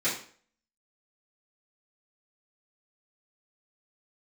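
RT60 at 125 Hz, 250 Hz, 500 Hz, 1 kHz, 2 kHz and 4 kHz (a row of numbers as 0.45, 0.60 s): 0.45, 0.45, 0.50, 0.45, 0.45, 0.40 s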